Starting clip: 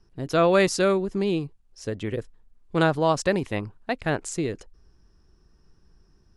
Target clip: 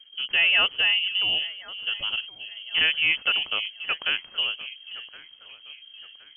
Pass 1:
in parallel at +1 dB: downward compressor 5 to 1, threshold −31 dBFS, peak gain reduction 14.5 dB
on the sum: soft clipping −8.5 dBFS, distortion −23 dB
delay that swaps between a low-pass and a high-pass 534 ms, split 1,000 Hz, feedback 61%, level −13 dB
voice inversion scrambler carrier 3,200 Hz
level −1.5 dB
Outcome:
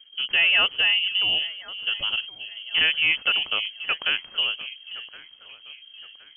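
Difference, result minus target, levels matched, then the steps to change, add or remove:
downward compressor: peak gain reduction −9 dB
change: downward compressor 5 to 1, threshold −42 dBFS, peak gain reduction 23.5 dB

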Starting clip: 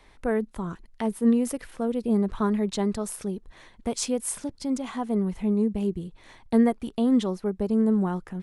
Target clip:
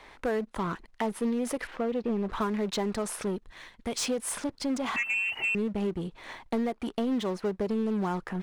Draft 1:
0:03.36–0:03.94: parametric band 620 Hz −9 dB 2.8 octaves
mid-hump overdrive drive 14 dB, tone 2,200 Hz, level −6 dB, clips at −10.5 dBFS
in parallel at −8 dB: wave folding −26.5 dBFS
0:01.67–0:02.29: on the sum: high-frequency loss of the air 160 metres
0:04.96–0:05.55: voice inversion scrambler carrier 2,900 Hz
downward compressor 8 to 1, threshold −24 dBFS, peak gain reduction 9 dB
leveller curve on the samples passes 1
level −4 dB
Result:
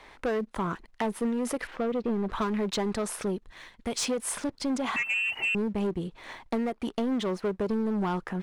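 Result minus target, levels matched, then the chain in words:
wave folding: distortion −14 dB
0:03.36–0:03.94: parametric band 620 Hz −9 dB 2.8 octaves
mid-hump overdrive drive 14 dB, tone 2,200 Hz, level −6 dB, clips at −10.5 dBFS
in parallel at −8 dB: wave folding −33 dBFS
0:01.67–0:02.29: on the sum: high-frequency loss of the air 160 metres
0:04.96–0:05.55: voice inversion scrambler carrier 2,900 Hz
downward compressor 8 to 1, threshold −24 dBFS, peak gain reduction 8.5 dB
leveller curve on the samples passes 1
level −4 dB

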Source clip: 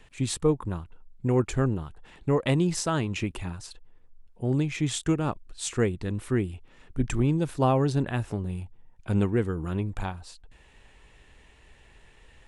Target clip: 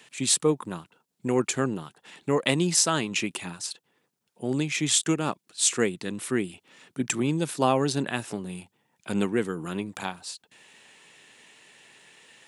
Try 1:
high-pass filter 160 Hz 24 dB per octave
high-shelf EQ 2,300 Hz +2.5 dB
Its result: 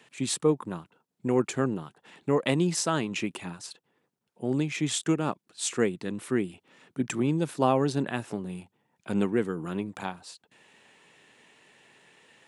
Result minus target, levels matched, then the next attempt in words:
4,000 Hz band −4.5 dB
high-pass filter 160 Hz 24 dB per octave
high-shelf EQ 2,300 Hz +12 dB

